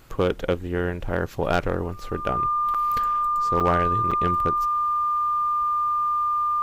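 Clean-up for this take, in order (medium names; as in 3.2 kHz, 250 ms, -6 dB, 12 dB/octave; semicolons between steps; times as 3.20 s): clip repair -12.5 dBFS; band-stop 1.2 kHz, Q 30; interpolate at 2.74/3.60/4.11 s, 6.2 ms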